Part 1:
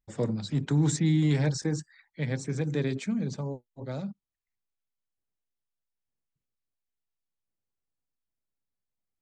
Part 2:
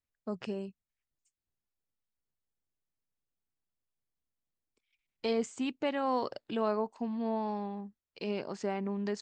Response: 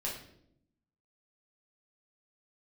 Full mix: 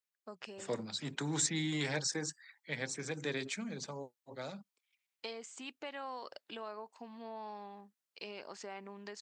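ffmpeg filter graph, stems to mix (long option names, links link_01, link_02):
-filter_complex "[0:a]adelay=500,volume=2dB[link_01];[1:a]acompressor=threshold=-33dB:ratio=6,volume=0dB[link_02];[link_01][link_02]amix=inputs=2:normalize=0,highpass=frequency=1200:poles=1"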